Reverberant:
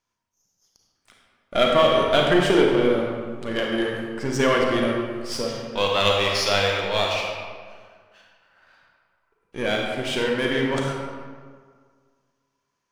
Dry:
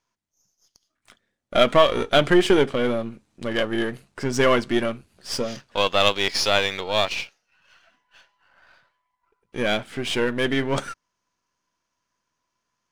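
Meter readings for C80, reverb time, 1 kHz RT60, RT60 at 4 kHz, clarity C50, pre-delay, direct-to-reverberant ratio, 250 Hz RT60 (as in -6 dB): 2.5 dB, 1.8 s, 1.8 s, 1.1 s, 0.5 dB, 32 ms, -1.0 dB, 1.8 s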